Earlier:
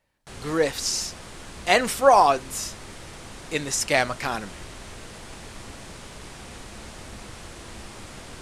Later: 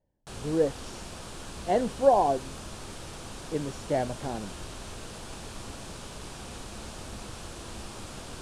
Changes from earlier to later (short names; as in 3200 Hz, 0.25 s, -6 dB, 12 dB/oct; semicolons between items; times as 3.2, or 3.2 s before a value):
speech: add running mean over 35 samples; master: add bell 2000 Hz -7.5 dB 0.42 oct